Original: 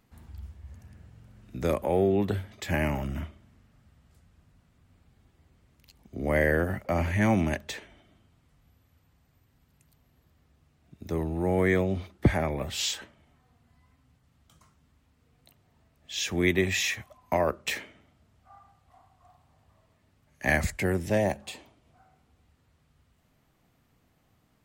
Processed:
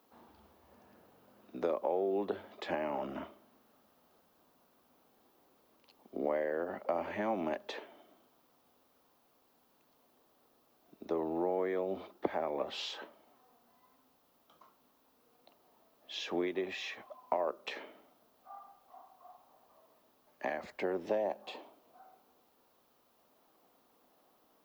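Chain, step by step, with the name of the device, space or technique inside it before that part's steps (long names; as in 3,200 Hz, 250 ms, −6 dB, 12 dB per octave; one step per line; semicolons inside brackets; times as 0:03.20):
baby monitor (band-pass filter 370–3,800 Hz; downward compressor, threshold −34 dBFS, peak gain reduction 14 dB; white noise bed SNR 29 dB)
octave-band graphic EQ 125/250/500/1,000/2,000/8,000 Hz −7/+3/+3/+4/−9/−11 dB
level +1.5 dB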